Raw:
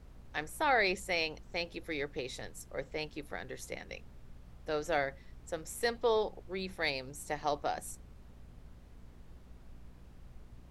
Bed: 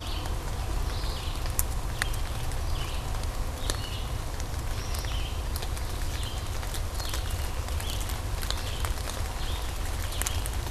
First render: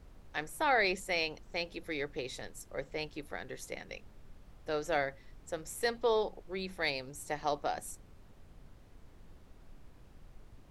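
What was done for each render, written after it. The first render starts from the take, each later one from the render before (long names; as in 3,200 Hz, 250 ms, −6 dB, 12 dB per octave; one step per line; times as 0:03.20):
hum removal 60 Hz, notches 4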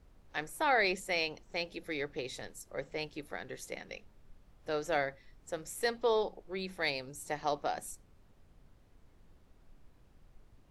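noise reduction from a noise print 6 dB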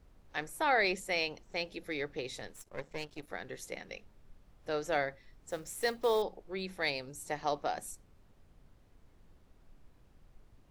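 0:02.53–0:03.29: gain on one half-wave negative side −12 dB
0:05.50–0:06.23: one scale factor per block 5 bits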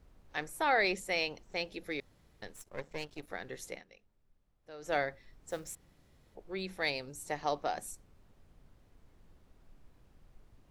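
0:02.00–0:02.42: fill with room tone
0:03.70–0:04.93: duck −14.5 dB, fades 0.15 s
0:05.75–0:06.35: fill with room tone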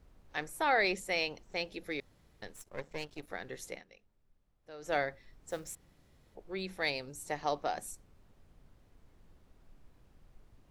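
no processing that can be heard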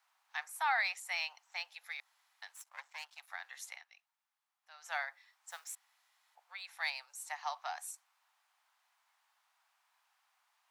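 Butterworth high-pass 800 Hz 48 dB per octave
dynamic equaliser 3,700 Hz, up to −4 dB, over −46 dBFS, Q 0.76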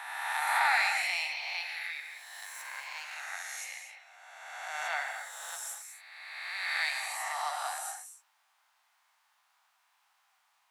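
peak hold with a rise ahead of every peak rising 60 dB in 1.88 s
reverb whose tail is shaped and stops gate 280 ms flat, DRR 3.5 dB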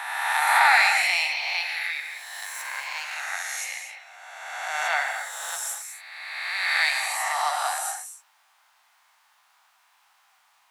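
level +9 dB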